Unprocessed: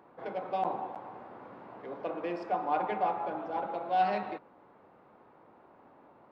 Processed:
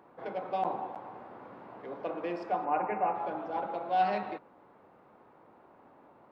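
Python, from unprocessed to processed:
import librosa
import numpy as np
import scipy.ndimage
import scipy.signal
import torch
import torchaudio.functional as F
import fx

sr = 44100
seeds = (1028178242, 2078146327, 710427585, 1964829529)

y = fx.brickwall_lowpass(x, sr, high_hz=2900.0, at=(2.64, 3.14), fade=0.02)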